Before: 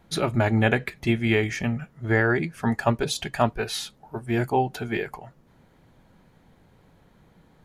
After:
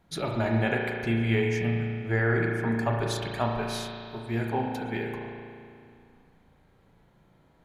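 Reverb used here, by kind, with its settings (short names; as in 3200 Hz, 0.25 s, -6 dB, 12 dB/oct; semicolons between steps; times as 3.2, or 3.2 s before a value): spring tank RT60 2.3 s, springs 35 ms, chirp 35 ms, DRR 0 dB; gain -7 dB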